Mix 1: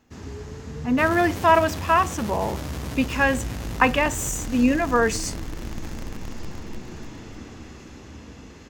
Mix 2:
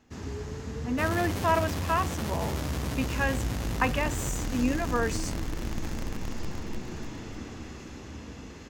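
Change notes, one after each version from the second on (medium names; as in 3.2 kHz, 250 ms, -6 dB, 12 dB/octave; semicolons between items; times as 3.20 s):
speech -8.5 dB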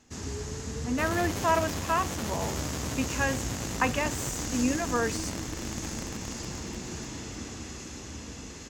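first sound: add peaking EQ 7.6 kHz +12.5 dB 1.5 oct; second sound: add high-pass 150 Hz 6 dB/octave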